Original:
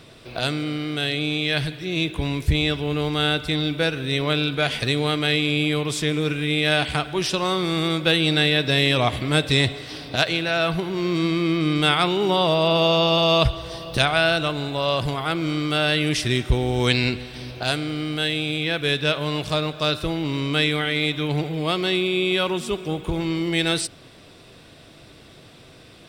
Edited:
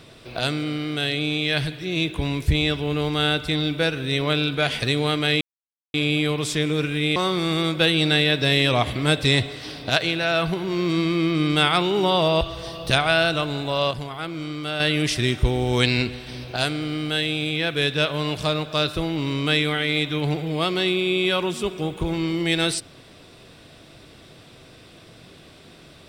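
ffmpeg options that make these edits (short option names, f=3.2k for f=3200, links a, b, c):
-filter_complex "[0:a]asplit=6[a][b][c][d][e][f];[a]atrim=end=5.41,asetpts=PTS-STARTPTS,afade=t=out:st=5.406:d=0.004:c=hsin,apad=pad_dur=0.53[g];[b]atrim=start=5.41:end=6.632,asetpts=PTS-STARTPTS,afade=t=in:d=0.004:c=hsin[h];[c]atrim=start=7.418:end=12.672[i];[d]atrim=start=13.478:end=14.982[j];[e]atrim=start=14.978:end=15.872,asetpts=PTS-STARTPTS,volume=-6.5dB[k];[f]atrim=start=15.868[l];[g][h]concat=n=2:v=0:a=1[m];[m][i]acrossfade=d=0.004:c1=hsin:c2=hsin[n];[n][j]acrossfade=d=0.004:c1=hsin:c2=hsin[o];[o][k]acrossfade=d=0.004:c1=hsin:c2=hsin[p];[p][l]acrossfade=d=0.004:c1=hsin:c2=hsin"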